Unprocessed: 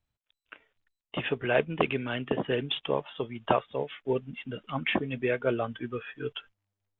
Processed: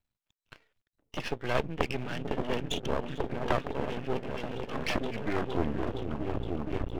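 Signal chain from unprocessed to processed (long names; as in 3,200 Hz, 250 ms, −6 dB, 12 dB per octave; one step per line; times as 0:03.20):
turntable brake at the end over 2.11 s
echo whose low-pass opens from repeat to repeat 465 ms, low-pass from 200 Hz, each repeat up 1 octave, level 0 dB
half-wave rectification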